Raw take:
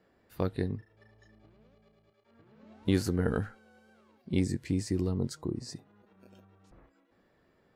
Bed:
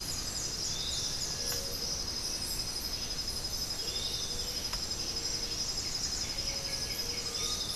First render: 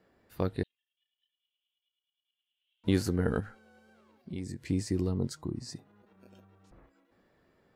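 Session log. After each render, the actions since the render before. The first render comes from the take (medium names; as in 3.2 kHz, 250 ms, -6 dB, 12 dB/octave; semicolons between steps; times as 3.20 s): 0.63–2.84 s: Butterworth band-pass 3.1 kHz, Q 5.3; 3.40–4.70 s: compression 2.5:1, threshold -38 dBFS; 5.33–5.74 s: peaking EQ 460 Hz -7.5 dB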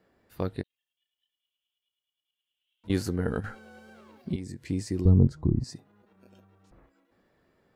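0.61–2.90 s: compression 2.5:1, threshold -50 dBFS; 3.44–4.36 s: gain +10 dB; 5.05–5.64 s: tilt EQ -4.5 dB/octave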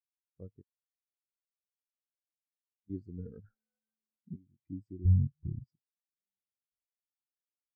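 peak limiter -16.5 dBFS, peak gain reduction 8.5 dB; spectral contrast expander 2.5:1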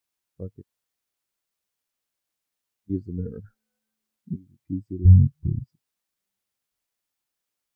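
trim +12 dB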